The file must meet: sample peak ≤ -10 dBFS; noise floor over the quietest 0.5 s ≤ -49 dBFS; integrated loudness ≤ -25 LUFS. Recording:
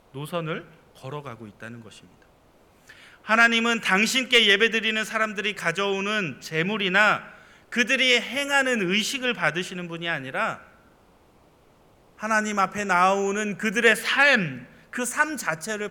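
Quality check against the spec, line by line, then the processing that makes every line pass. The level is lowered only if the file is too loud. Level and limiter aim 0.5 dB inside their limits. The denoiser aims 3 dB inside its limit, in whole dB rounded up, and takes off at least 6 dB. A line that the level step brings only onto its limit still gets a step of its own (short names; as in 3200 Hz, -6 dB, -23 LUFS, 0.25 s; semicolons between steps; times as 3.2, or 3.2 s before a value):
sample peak -6.0 dBFS: fail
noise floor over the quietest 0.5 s -57 dBFS: OK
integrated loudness -22.0 LUFS: fail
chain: gain -3.5 dB; limiter -10.5 dBFS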